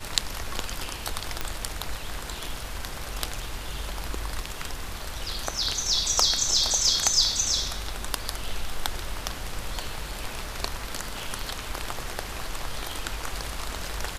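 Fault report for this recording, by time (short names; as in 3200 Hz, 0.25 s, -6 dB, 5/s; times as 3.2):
1.41 pop -11 dBFS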